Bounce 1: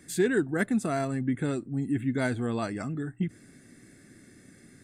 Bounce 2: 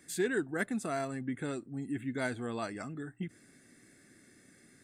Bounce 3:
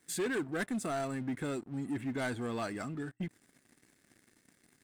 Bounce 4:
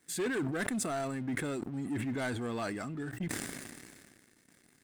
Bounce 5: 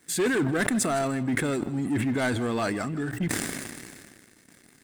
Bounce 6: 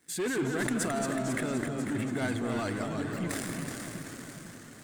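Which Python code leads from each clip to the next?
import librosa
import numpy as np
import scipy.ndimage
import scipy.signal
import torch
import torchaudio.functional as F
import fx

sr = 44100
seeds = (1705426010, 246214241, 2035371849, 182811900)

y1 = fx.low_shelf(x, sr, hz=270.0, db=-9.0)
y1 = F.gain(torch.from_numpy(y1), -3.5).numpy()
y2 = fx.leveller(y1, sr, passes=3)
y2 = F.gain(torch.from_numpy(y2), -9.0).numpy()
y3 = fx.sustainer(y2, sr, db_per_s=30.0)
y4 = y3 + 10.0 ** (-17.0 / 20.0) * np.pad(y3, (int(158 * sr / 1000.0), 0))[:len(y3)]
y4 = F.gain(torch.from_numpy(y4), 8.5).numpy()
y5 = fx.echo_alternate(y4, sr, ms=247, hz=1100.0, feedback_pct=73, wet_db=-7)
y5 = fx.echo_pitch(y5, sr, ms=177, semitones=-1, count=3, db_per_echo=-6.0)
y5 = F.gain(torch.from_numpy(y5), -7.0).numpy()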